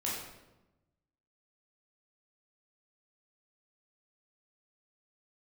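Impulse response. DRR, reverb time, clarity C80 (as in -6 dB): -6.0 dB, 1.0 s, 4.0 dB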